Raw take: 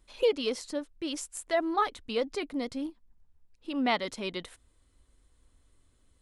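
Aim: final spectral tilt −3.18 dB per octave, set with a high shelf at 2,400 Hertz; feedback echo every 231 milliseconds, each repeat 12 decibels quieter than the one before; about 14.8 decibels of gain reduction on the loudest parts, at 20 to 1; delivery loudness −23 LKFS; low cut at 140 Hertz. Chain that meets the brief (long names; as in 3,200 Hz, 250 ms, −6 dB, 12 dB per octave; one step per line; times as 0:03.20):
high-pass filter 140 Hz
high-shelf EQ 2,400 Hz −3.5 dB
downward compressor 20 to 1, threshold −35 dBFS
repeating echo 231 ms, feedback 25%, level −12 dB
level +18 dB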